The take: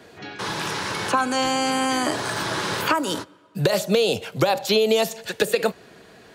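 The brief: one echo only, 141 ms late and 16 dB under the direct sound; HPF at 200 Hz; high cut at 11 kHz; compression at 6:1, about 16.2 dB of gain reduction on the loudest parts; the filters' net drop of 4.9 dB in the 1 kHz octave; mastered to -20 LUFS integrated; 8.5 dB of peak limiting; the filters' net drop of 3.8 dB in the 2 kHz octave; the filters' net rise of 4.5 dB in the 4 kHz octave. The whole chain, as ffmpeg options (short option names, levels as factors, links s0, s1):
-af "highpass=200,lowpass=11000,equalizer=f=1000:t=o:g=-5.5,equalizer=f=2000:t=o:g=-5.5,equalizer=f=4000:t=o:g=7.5,acompressor=threshold=0.02:ratio=6,alimiter=level_in=1.5:limit=0.0631:level=0:latency=1,volume=0.668,aecho=1:1:141:0.158,volume=7.08"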